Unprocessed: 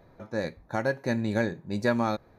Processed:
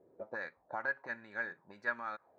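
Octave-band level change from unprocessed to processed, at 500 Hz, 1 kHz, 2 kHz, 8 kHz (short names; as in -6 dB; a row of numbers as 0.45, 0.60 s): -16.5 dB, -9.0 dB, -2.5 dB, under -25 dB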